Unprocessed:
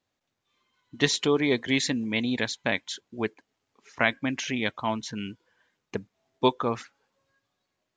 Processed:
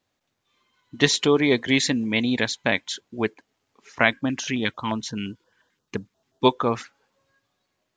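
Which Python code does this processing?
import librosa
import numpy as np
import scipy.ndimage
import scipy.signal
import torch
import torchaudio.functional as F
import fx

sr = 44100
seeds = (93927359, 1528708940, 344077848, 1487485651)

y = fx.filter_lfo_notch(x, sr, shape='square', hz=5.7, low_hz=660.0, high_hz=2200.0, q=1.0, at=(4.1, 6.44), fade=0.02)
y = y * librosa.db_to_amplitude(4.5)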